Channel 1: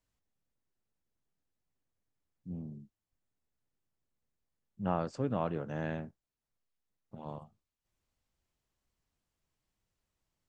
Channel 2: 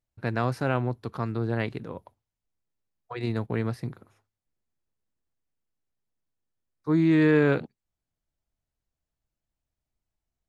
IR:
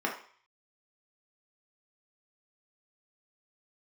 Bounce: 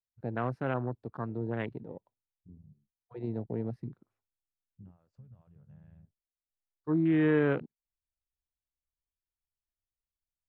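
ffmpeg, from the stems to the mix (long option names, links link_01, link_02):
-filter_complex "[0:a]asubboost=boost=5.5:cutoff=97,acompressor=threshold=-40dB:ratio=12,volume=-7dB[link_01];[1:a]highpass=110,volume=-5dB[link_02];[link_01][link_02]amix=inputs=2:normalize=0,afwtdn=0.0126,highshelf=frequency=5200:gain=-11.5"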